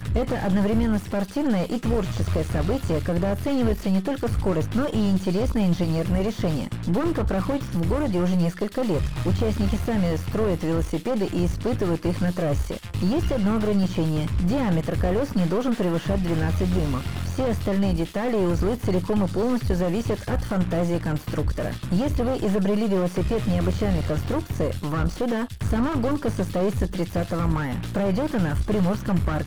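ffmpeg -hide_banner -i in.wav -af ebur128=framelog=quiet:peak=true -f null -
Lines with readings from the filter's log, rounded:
Integrated loudness:
  I:         -24.5 LUFS
  Threshold: -34.5 LUFS
Loudness range:
  LRA:         1.4 LU
  Threshold: -44.5 LUFS
  LRA low:   -25.1 LUFS
  LRA high:  -23.8 LUFS
True peak:
  Peak:       -9.6 dBFS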